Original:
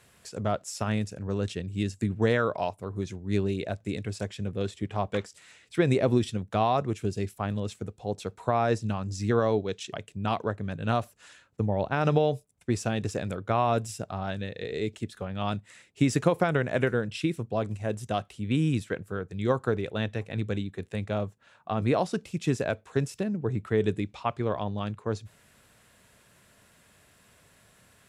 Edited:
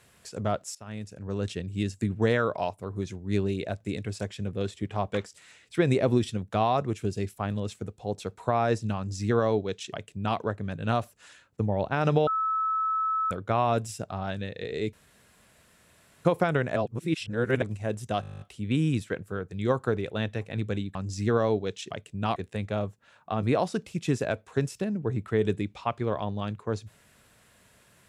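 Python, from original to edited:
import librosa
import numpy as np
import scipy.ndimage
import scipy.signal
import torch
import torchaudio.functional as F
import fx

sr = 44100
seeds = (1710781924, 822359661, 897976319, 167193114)

y = fx.edit(x, sr, fx.fade_in_from(start_s=0.75, length_s=0.75, floor_db=-22.0),
    fx.duplicate(start_s=8.97, length_s=1.41, to_s=20.75),
    fx.bleep(start_s=12.27, length_s=1.04, hz=1300.0, db=-24.0),
    fx.room_tone_fill(start_s=14.93, length_s=1.32),
    fx.reverse_span(start_s=16.76, length_s=0.86),
    fx.stutter(start_s=18.21, slice_s=0.02, count=11), tone=tone)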